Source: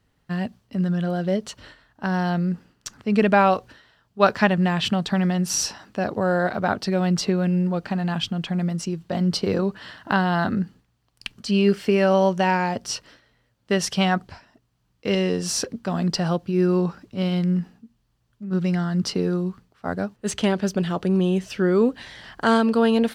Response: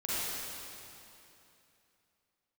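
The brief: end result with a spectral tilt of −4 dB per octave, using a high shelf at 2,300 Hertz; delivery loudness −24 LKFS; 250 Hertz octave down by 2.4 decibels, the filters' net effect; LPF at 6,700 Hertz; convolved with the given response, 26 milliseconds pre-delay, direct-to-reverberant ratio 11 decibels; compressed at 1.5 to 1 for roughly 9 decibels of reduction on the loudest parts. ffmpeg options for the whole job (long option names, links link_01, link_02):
-filter_complex "[0:a]lowpass=6700,equalizer=frequency=250:width_type=o:gain=-4,highshelf=frequency=2300:gain=9,acompressor=threshold=-36dB:ratio=1.5,asplit=2[link_01][link_02];[1:a]atrim=start_sample=2205,adelay=26[link_03];[link_02][link_03]afir=irnorm=-1:irlink=0,volume=-18.5dB[link_04];[link_01][link_04]amix=inputs=2:normalize=0,volume=5dB"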